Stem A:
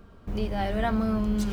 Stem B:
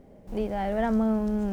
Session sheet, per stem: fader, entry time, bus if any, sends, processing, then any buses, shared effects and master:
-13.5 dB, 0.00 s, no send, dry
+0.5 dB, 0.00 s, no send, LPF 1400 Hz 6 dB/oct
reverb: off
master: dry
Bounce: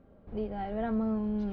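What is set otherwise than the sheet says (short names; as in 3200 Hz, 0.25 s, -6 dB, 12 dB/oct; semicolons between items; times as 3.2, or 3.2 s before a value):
stem B +0.5 dB -> -7.0 dB; master: extra Bessel low-pass 2900 Hz, order 8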